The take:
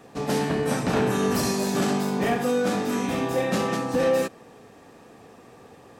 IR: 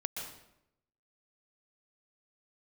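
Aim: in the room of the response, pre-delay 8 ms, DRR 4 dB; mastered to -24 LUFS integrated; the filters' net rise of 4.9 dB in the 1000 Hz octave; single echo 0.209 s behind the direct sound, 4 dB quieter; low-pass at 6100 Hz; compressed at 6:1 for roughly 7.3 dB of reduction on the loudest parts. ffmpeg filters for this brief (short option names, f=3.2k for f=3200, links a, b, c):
-filter_complex "[0:a]lowpass=6.1k,equalizer=f=1k:t=o:g=6.5,acompressor=threshold=-25dB:ratio=6,aecho=1:1:209:0.631,asplit=2[a][b];[1:a]atrim=start_sample=2205,adelay=8[c];[b][c]afir=irnorm=-1:irlink=0,volume=-5.5dB[d];[a][d]amix=inputs=2:normalize=0,volume=2dB"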